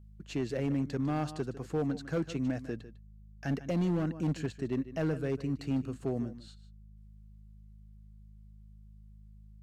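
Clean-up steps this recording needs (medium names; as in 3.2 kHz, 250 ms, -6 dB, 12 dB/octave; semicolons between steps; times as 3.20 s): clip repair -25 dBFS; de-hum 52.2 Hz, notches 4; inverse comb 151 ms -15 dB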